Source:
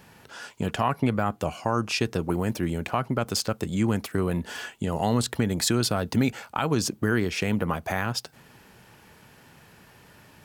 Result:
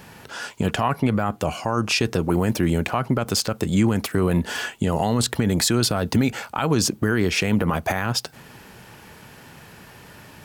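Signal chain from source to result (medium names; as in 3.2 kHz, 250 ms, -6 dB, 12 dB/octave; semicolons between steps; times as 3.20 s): peak limiter -18 dBFS, peak gain reduction 7 dB; trim +8 dB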